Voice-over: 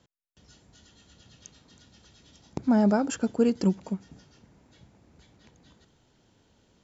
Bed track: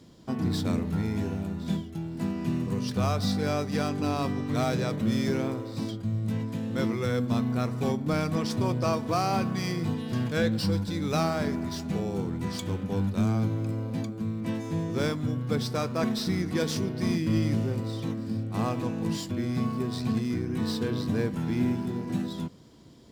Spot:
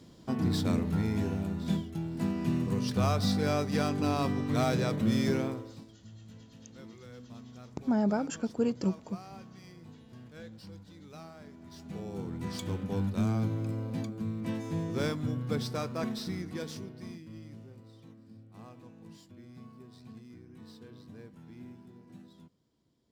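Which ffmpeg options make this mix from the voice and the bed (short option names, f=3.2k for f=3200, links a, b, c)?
-filter_complex "[0:a]adelay=5200,volume=-6dB[a];[1:a]volume=17dB,afade=t=out:st=5.32:d=0.53:silence=0.0944061,afade=t=in:st=11.58:d=1.09:silence=0.125893,afade=t=out:st=15.42:d=1.86:silence=0.125893[b];[a][b]amix=inputs=2:normalize=0"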